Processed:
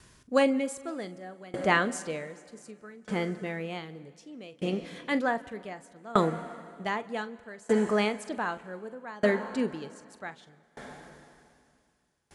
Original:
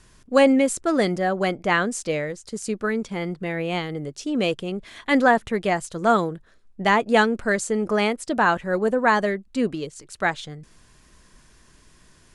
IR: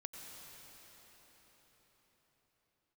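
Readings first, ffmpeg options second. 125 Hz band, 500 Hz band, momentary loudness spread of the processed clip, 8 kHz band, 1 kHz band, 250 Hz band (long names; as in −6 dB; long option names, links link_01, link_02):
−7.0 dB, −8.0 dB, 21 LU, −11.0 dB, −10.0 dB, −8.5 dB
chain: -filter_complex "[0:a]highpass=51,asplit=2[link_01][link_02];[1:a]atrim=start_sample=2205,adelay=43[link_03];[link_02][link_03]afir=irnorm=-1:irlink=0,volume=-8dB[link_04];[link_01][link_04]amix=inputs=2:normalize=0,aeval=exprs='val(0)*pow(10,-26*if(lt(mod(0.65*n/s,1),2*abs(0.65)/1000),1-mod(0.65*n/s,1)/(2*abs(0.65)/1000),(mod(0.65*n/s,1)-2*abs(0.65)/1000)/(1-2*abs(0.65)/1000))/20)':channel_layout=same"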